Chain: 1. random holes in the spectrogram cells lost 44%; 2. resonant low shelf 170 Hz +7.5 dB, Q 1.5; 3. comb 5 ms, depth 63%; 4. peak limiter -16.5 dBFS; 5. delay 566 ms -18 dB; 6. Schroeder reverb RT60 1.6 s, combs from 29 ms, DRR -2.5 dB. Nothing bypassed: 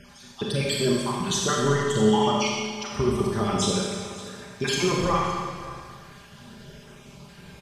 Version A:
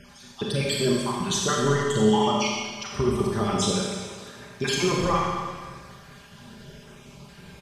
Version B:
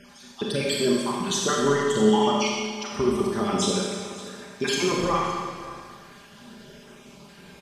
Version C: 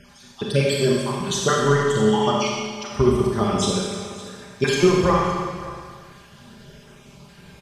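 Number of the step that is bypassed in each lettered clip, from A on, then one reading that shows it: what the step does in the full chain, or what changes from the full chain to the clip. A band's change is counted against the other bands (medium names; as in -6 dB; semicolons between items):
5, momentary loudness spread change +2 LU; 2, 125 Hz band -5.5 dB; 4, 8 kHz band -3.0 dB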